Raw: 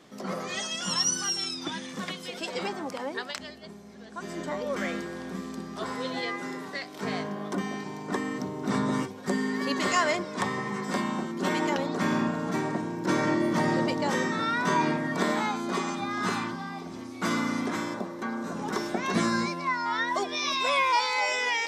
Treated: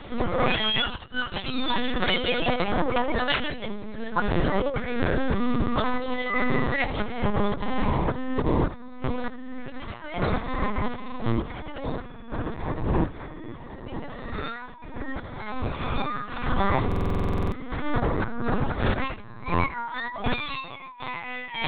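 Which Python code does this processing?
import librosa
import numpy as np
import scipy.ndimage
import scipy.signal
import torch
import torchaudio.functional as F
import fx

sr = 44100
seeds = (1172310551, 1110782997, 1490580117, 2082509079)

p1 = scipy.signal.sosfilt(scipy.signal.butter(4, 58.0, 'highpass', fs=sr, output='sos'), x)
p2 = p1 + 0.42 * np.pad(p1, (int(4.1 * sr / 1000.0), 0))[:len(p1)]
p3 = fx.over_compress(p2, sr, threshold_db=-34.0, ratio=-0.5)
p4 = p3 + fx.echo_single(p3, sr, ms=76, db=-14.5, dry=0)
p5 = fx.lpc_vocoder(p4, sr, seeds[0], excitation='pitch_kept', order=10)
p6 = fx.buffer_glitch(p5, sr, at_s=(16.87,), block=2048, repeats=13)
y = F.gain(torch.from_numpy(p6), 8.5).numpy()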